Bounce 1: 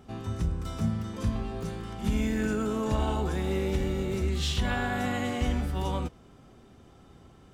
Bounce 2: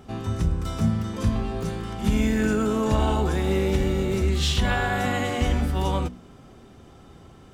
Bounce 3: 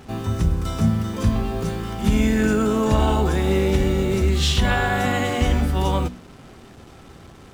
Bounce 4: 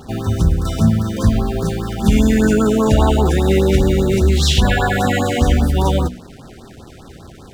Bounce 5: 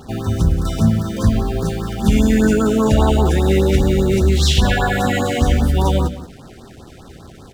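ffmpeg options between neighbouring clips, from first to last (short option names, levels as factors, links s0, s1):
-af "bandreject=f=60.9:t=h:w=4,bandreject=f=121.8:t=h:w=4,bandreject=f=182.7:t=h:w=4,bandreject=f=243.6:t=h:w=4,bandreject=f=304.5:t=h:w=4,volume=2"
-af "acrusher=bits=7:mix=0:aa=0.5,volume=1.5"
-af "afftfilt=real='re*(1-between(b*sr/1024,900*pow(2700/900,0.5+0.5*sin(2*PI*5*pts/sr))/1.41,900*pow(2700/900,0.5+0.5*sin(2*PI*5*pts/sr))*1.41))':imag='im*(1-between(b*sr/1024,900*pow(2700/900,0.5+0.5*sin(2*PI*5*pts/sr))/1.41,900*pow(2700/900,0.5+0.5*sin(2*PI*5*pts/sr))*1.41))':win_size=1024:overlap=0.75,volume=1.88"
-af "aecho=1:1:179:0.188,volume=0.891"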